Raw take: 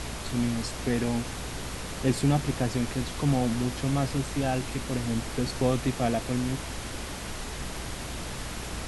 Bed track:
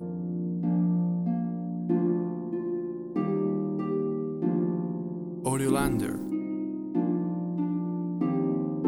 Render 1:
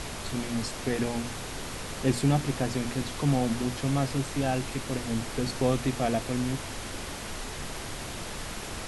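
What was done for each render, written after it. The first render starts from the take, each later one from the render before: hum notches 60/120/180/240/300 Hz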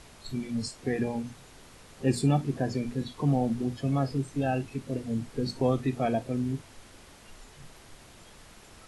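noise print and reduce 15 dB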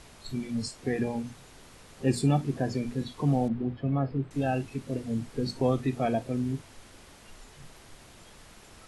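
3.48–4.31 s: distance through air 430 m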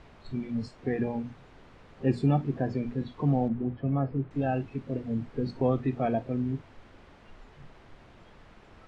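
Bessel low-pass 2 kHz, order 2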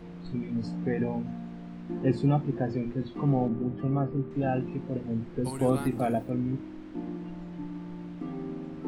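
add bed track -9.5 dB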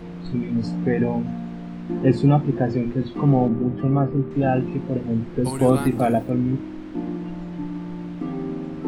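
trim +8 dB

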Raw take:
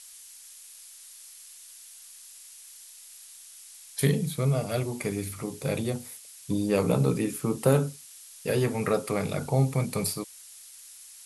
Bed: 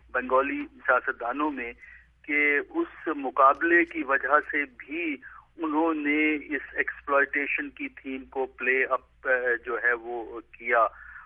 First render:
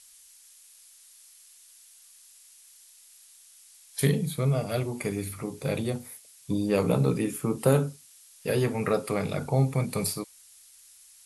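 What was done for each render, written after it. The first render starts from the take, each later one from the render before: noise print and reduce 6 dB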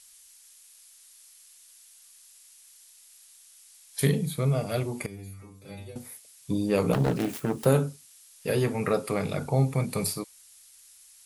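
5.06–5.96 s: inharmonic resonator 96 Hz, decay 0.56 s, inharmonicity 0.002; 6.93–7.66 s: self-modulated delay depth 0.62 ms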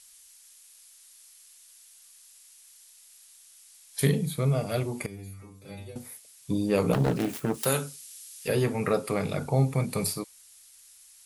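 7.54–8.48 s: tilt shelf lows -8.5 dB, about 1.2 kHz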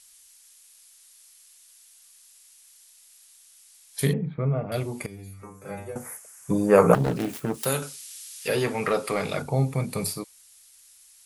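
4.13–4.72 s: inverse Chebyshev low-pass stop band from 10 kHz, stop band 80 dB; 5.43–6.95 s: FFT filter 110 Hz 0 dB, 160 Hz +7 dB, 270 Hz +1 dB, 430 Hz +9 dB, 1.5 kHz +15 dB, 4 kHz -11 dB, 6.4 kHz +7 dB, 15 kHz +4 dB; 7.82–9.42 s: overdrive pedal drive 12 dB, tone 6.6 kHz, clips at -13.5 dBFS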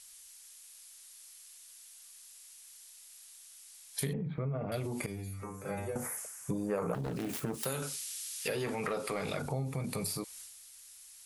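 transient shaper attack 0 dB, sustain +6 dB; compression 5:1, threshold -33 dBFS, peak gain reduction 20 dB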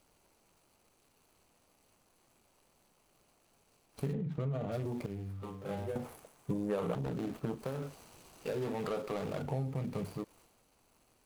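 median filter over 25 samples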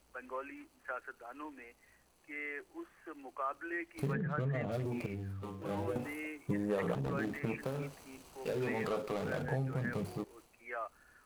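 add bed -19 dB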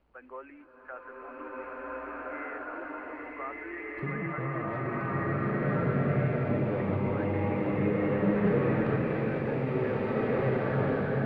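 distance through air 440 m; swelling reverb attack 1780 ms, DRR -10 dB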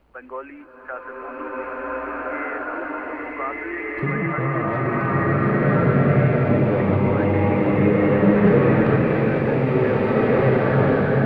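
trim +10.5 dB

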